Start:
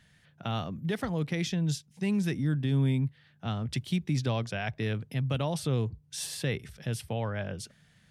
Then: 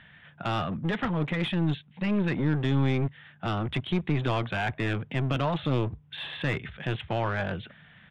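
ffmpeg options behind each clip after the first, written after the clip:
ffmpeg -i in.wav -filter_complex "[0:a]equalizer=frequency=460:width_type=o:width=1.2:gain=-7,aresample=8000,aeval=exprs='clip(val(0),-1,0.015)':channel_layout=same,aresample=44100,asplit=2[link_01][link_02];[link_02]highpass=frequency=720:poles=1,volume=15dB,asoftclip=type=tanh:threshold=-24dB[link_03];[link_01][link_03]amix=inputs=2:normalize=0,lowpass=frequency=1300:poles=1,volume=-6dB,volume=8dB" out.wav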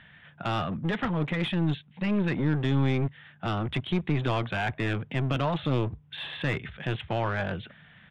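ffmpeg -i in.wav -af anull out.wav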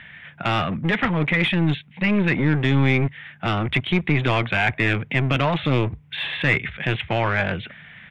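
ffmpeg -i in.wav -af "equalizer=frequency=2200:width_type=o:width=0.64:gain=10,volume=6dB" out.wav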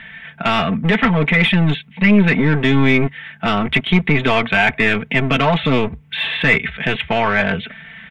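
ffmpeg -i in.wav -af "aecho=1:1:4.5:0.67,volume=4.5dB" out.wav

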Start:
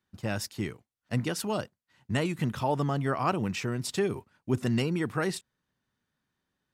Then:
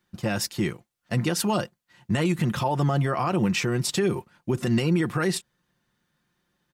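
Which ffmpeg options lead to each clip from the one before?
ffmpeg -i in.wav -af "aecho=1:1:5.7:0.46,alimiter=limit=-22.5dB:level=0:latency=1:release=80,volume=7.5dB" out.wav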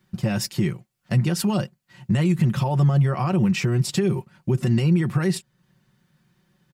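ffmpeg -i in.wav -af "equalizer=frequency=120:width=1.2:gain=12,aecho=1:1:5.3:0.41,acompressor=threshold=-36dB:ratio=1.5,volume=4.5dB" out.wav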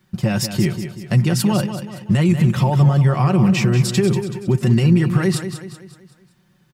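ffmpeg -i in.wav -af "aecho=1:1:189|378|567|756|945:0.335|0.154|0.0709|0.0326|0.015,volume=4.5dB" out.wav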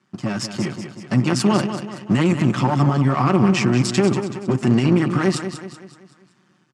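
ffmpeg -i in.wav -af "aeval=exprs='if(lt(val(0),0),0.251*val(0),val(0))':channel_layout=same,dynaudnorm=framelen=650:gausssize=3:maxgain=11.5dB,highpass=frequency=130:width=0.5412,highpass=frequency=130:width=1.3066,equalizer=frequency=160:width_type=q:width=4:gain=-7,equalizer=frequency=270:width_type=q:width=4:gain=4,equalizer=frequency=500:width_type=q:width=4:gain=-5,equalizer=frequency=1200:width_type=q:width=4:gain=6,equalizer=frequency=3800:width_type=q:width=4:gain=-4,lowpass=frequency=8200:width=0.5412,lowpass=frequency=8200:width=1.3066" out.wav

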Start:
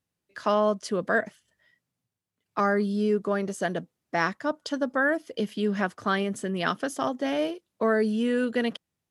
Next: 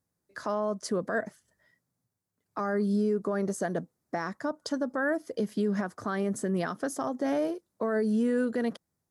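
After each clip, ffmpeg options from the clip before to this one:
ffmpeg -i in.wav -af "equalizer=frequency=2900:width_type=o:width=0.85:gain=-14.5,alimiter=limit=-22.5dB:level=0:latency=1:release=145,volume=2.5dB" out.wav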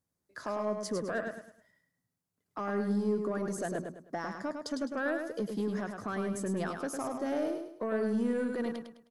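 ffmpeg -i in.wav -af "asoftclip=type=tanh:threshold=-21dB,aecho=1:1:104|208|312|416:0.531|0.181|0.0614|0.0209,volume=-3.5dB" out.wav

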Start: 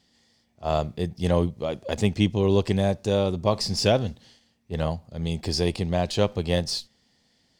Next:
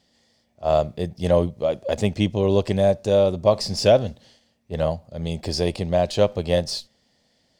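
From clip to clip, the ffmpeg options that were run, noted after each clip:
ffmpeg -i in.wav -af "equalizer=frequency=590:width_type=o:width=0.46:gain=9" out.wav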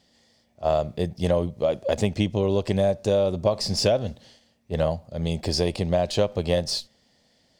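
ffmpeg -i in.wav -af "acompressor=threshold=-19dB:ratio=6,volume=1.5dB" out.wav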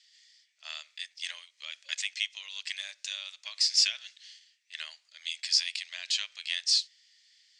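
ffmpeg -i in.wav -af "asuperpass=centerf=4000:order=8:qfactor=0.64,volume=3.5dB" out.wav

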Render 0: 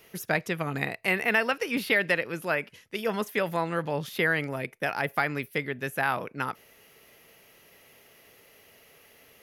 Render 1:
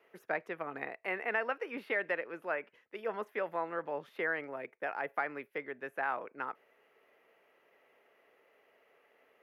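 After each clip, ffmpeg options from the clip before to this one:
ffmpeg -i in.wav -filter_complex "[0:a]acrossover=split=300 2200:gain=0.0708 1 0.0708[link_01][link_02][link_03];[link_01][link_02][link_03]amix=inputs=3:normalize=0,volume=-6dB" out.wav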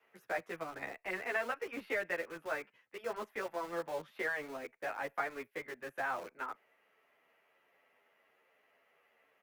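ffmpeg -i in.wav -filter_complex "[0:a]acrossover=split=310|530|1600[link_01][link_02][link_03][link_04];[link_02]acrusher=bits=7:mix=0:aa=0.000001[link_05];[link_01][link_05][link_03][link_04]amix=inputs=4:normalize=0,asplit=2[link_06][link_07];[link_07]adelay=10.6,afreqshift=-1.2[link_08];[link_06][link_08]amix=inputs=2:normalize=1,volume=1dB" out.wav

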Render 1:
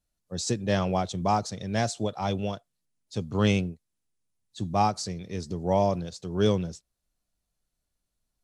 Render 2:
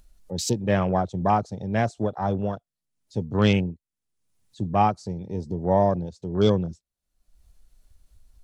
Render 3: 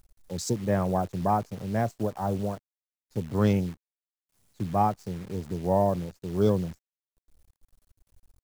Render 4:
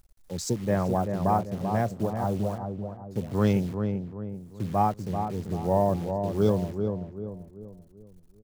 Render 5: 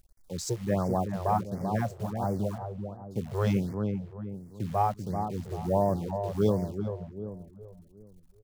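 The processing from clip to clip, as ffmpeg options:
ffmpeg -i in.wav -af "acompressor=mode=upward:threshold=-33dB:ratio=2.5,afwtdn=0.0141,volume=3.5dB" out.wav
ffmpeg -i in.wav -af "equalizer=frequency=2900:width_type=o:width=1:gain=-13,acrusher=bits=8:dc=4:mix=0:aa=0.000001,volume=-3dB" out.wav
ffmpeg -i in.wav -filter_complex "[0:a]asplit=2[link_01][link_02];[link_02]adelay=388,lowpass=frequency=1100:poles=1,volume=-5.5dB,asplit=2[link_03][link_04];[link_04]adelay=388,lowpass=frequency=1100:poles=1,volume=0.44,asplit=2[link_05][link_06];[link_06]adelay=388,lowpass=frequency=1100:poles=1,volume=0.44,asplit=2[link_07][link_08];[link_08]adelay=388,lowpass=frequency=1100:poles=1,volume=0.44,asplit=2[link_09][link_10];[link_10]adelay=388,lowpass=frequency=1100:poles=1,volume=0.44[link_11];[link_01][link_03][link_05][link_07][link_09][link_11]amix=inputs=6:normalize=0" out.wav
ffmpeg -i in.wav -af "afftfilt=real='re*(1-between(b*sr/1024,220*pow(3300/220,0.5+0.5*sin(2*PI*1.4*pts/sr))/1.41,220*pow(3300/220,0.5+0.5*sin(2*PI*1.4*pts/sr))*1.41))':imag='im*(1-between(b*sr/1024,220*pow(3300/220,0.5+0.5*sin(2*PI*1.4*pts/sr))/1.41,220*pow(3300/220,0.5+0.5*sin(2*PI*1.4*pts/sr))*1.41))':win_size=1024:overlap=0.75,volume=-2dB" out.wav

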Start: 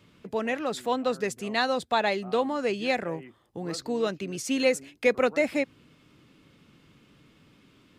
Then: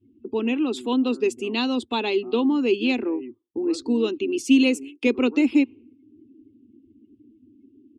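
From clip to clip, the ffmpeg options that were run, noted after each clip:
ffmpeg -i in.wav -af "afftdn=noise_reduction=34:noise_floor=-50,firequalizer=gain_entry='entry(110,0);entry(160,-29);entry(230,10);entry(360,13);entry(590,-13);entry(920,-1);entry(1800,-14);entry(2700,8);entry(4200,-1)':delay=0.05:min_phase=1,volume=1dB" out.wav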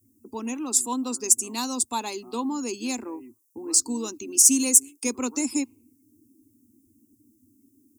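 ffmpeg -i in.wav -af "aexciter=amount=14.4:drive=10:freq=4900,equalizer=frequency=100:width_type=o:width=0.67:gain=4,equalizer=frequency=400:width_type=o:width=0.67:gain=-8,equalizer=frequency=1000:width_type=o:width=0.67:gain=8,equalizer=frequency=4000:width_type=o:width=0.67:gain=-11,volume=-6dB" out.wav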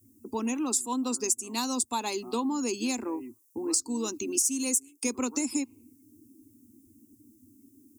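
ffmpeg -i in.wav -af "acompressor=threshold=-30dB:ratio=4,volume=3.5dB" out.wav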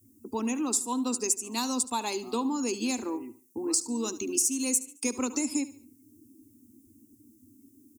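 ffmpeg -i in.wav -af "aecho=1:1:73|146|219:0.15|0.0554|0.0205" out.wav

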